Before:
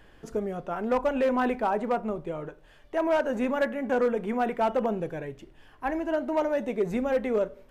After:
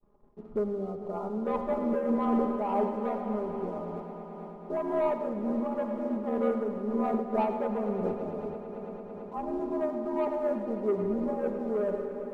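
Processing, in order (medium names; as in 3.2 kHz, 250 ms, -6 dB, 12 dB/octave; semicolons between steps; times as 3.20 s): bit-reversed sample order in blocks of 16 samples; expander -50 dBFS; rippled Chebyshev low-pass 1.3 kHz, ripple 3 dB; waveshaping leveller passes 1; granular stretch 1.6×, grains 26 ms; echo with a slow build-up 111 ms, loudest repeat 5, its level -17 dB; on a send at -6.5 dB: reverberation RT60 1.5 s, pre-delay 74 ms; on the sum: random flutter of the level, depth 55%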